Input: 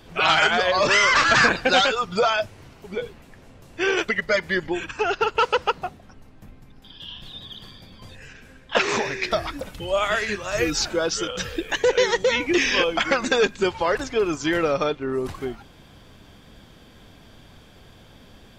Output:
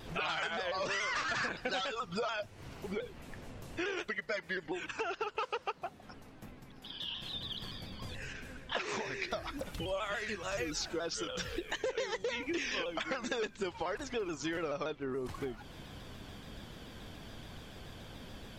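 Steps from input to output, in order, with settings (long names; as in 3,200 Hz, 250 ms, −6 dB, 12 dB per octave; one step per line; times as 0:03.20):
0:04.08–0:07.33: low-shelf EQ 120 Hz −11 dB
downward compressor 4 to 1, threshold −37 dBFS, peak gain reduction 19.5 dB
pitch modulation by a square or saw wave saw down 7 Hz, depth 100 cents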